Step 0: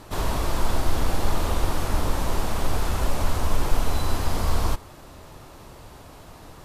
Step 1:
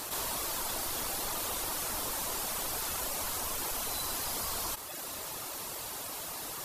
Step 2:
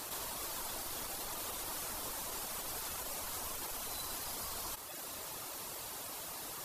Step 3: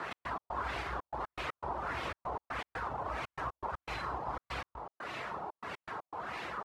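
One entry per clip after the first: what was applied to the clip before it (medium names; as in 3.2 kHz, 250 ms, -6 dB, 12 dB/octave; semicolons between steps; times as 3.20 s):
RIAA curve recording; reverb removal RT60 0.64 s; level flattener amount 70%; trim -8 dB
peak limiter -27 dBFS, peak gain reduction 6 dB; trim -4.5 dB
frequency shift +50 Hz; trance gate "x.x.xxxx." 120 bpm -60 dB; LFO low-pass sine 1.6 Hz 850–2400 Hz; trim +6 dB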